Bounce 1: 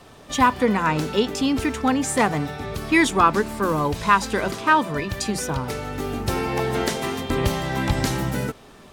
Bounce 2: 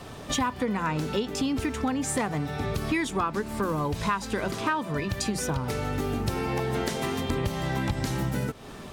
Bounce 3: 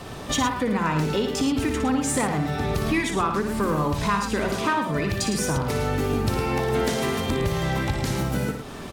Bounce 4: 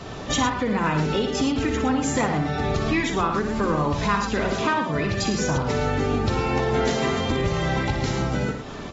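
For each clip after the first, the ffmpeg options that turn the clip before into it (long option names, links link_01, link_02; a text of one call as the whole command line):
ffmpeg -i in.wav -af "equalizer=frequency=110:width=0.59:gain=4,acompressor=threshold=-30dB:ratio=5,volume=4dB" out.wav
ffmpeg -i in.wav -filter_complex "[0:a]asplit=2[link_01][link_02];[link_02]asoftclip=type=tanh:threshold=-26dB,volume=-4dB[link_03];[link_01][link_03]amix=inputs=2:normalize=0,aecho=1:1:59|109:0.422|0.398" out.wav
ffmpeg -i in.wav -ar 44100 -c:a aac -b:a 24k out.aac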